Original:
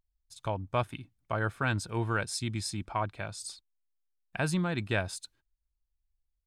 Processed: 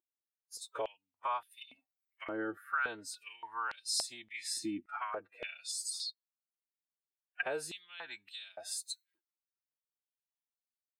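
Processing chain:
noise reduction from a noise print of the clip's start 18 dB
phase-vocoder stretch with locked phases 1.7×
downward compressor 6 to 1, threshold −41 dBFS, peak gain reduction 16 dB
high-shelf EQ 11,000 Hz +10.5 dB
high-pass on a step sequencer 3.5 Hz 320–4,200 Hz
level +3 dB

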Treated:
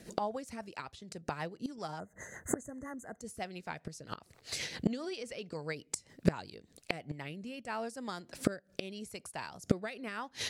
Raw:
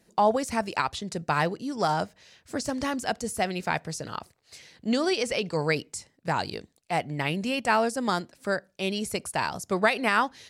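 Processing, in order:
gate with flip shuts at −26 dBFS, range −26 dB
rotating-speaker cabinet horn 7.5 Hz, later 0.8 Hz, at 0:06.41
gain on a spectral selection 0:01.99–0:03.21, 2,100–6,100 Hz −29 dB
level +13.5 dB

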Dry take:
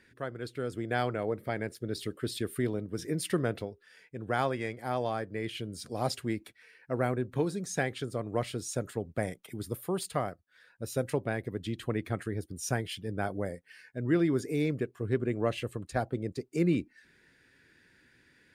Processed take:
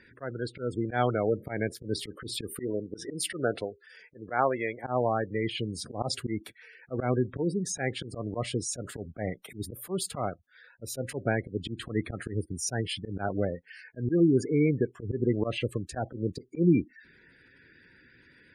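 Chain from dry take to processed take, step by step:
gate on every frequency bin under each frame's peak −20 dB strong
0:02.55–0:04.84: bass and treble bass −10 dB, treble 0 dB
volume swells 104 ms
level +5.5 dB

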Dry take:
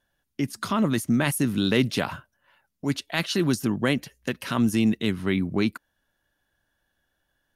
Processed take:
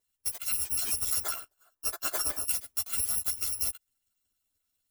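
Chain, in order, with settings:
samples in bit-reversed order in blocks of 256 samples
gain on a spectral selection 0:01.90–0:03.76, 280–1,800 Hz +11 dB
low-shelf EQ 66 Hz −7 dB
harmonic and percussive parts rebalanced harmonic −11 dB
high-shelf EQ 7,700 Hz +7.5 dB
downward compressor, threshold −21 dBFS, peak gain reduction 7 dB
time stretch by overlap-add 0.65×, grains 98 ms
multi-voice chorus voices 6, 0.89 Hz, delay 12 ms, depth 2.4 ms

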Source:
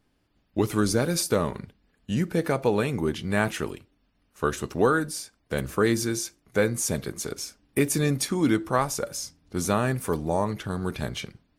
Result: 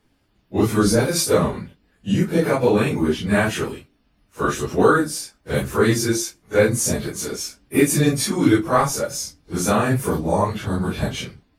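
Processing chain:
random phases in long frames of 100 ms
level +6 dB

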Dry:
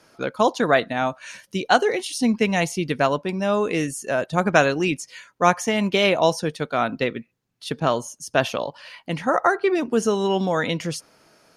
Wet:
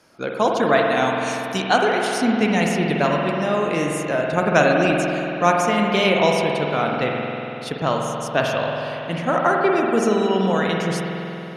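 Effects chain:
0:00.84–0:01.62: high-shelf EQ 2,800 Hz +11 dB
spring reverb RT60 3.4 s, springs 47 ms, chirp 80 ms, DRR −0.5 dB
level −1 dB

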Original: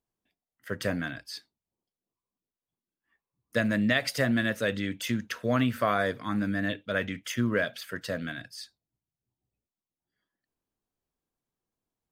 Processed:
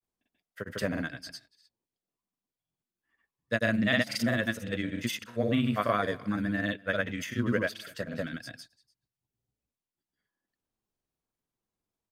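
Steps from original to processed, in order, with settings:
single-tap delay 257 ms −24 dB
granular cloud, grains 20 per second, pitch spread up and down by 0 semitones

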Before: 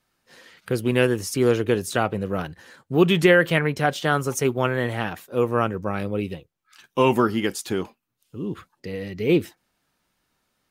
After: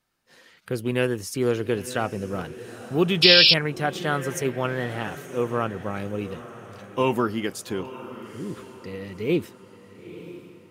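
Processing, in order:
feedback delay with all-pass diffusion 917 ms, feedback 44%, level −14 dB
sound drawn into the spectrogram noise, 0:03.22–0:03.54, 2,300–5,500 Hz −11 dBFS
level −4 dB

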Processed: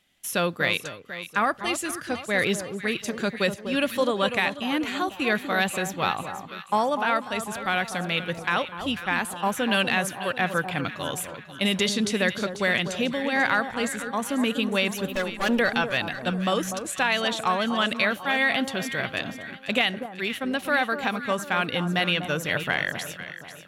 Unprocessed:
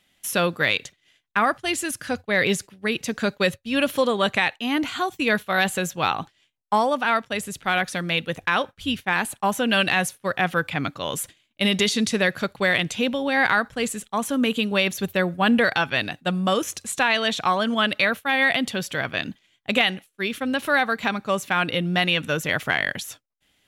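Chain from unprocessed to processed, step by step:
0:15.12–0:15.59: lower of the sound and its delayed copy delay 3.5 ms
delay that swaps between a low-pass and a high-pass 246 ms, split 1,200 Hz, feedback 65%, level −8 dB
level −3 dB

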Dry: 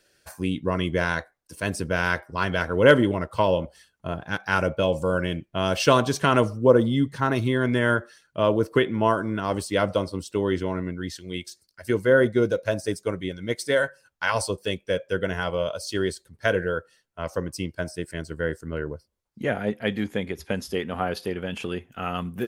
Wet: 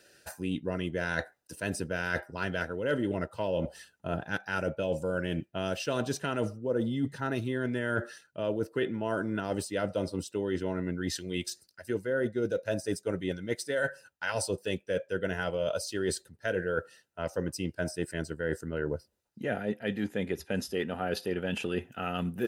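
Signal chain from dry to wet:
dynamic equaliser 950 Hz, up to −4 dB, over −33 dBFS, Q 1.6
reversed playback
downward compressor 8 to 1, threshold −32 dBFS, peak gain reduction 20.5 dB
reversed playback
notch comb filter 1,100 Hz
level +5 dB

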